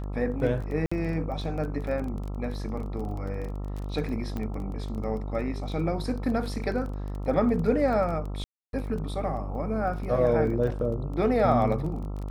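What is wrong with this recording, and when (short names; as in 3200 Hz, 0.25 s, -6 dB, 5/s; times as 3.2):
buzz 50 Hz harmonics 27 -33 dBFS
crackle 20/s -34 dBFS
0.86–0.92 gap 55 ms
4.37 pop -21 dBFS
8.44–8.73 gap 0.292 s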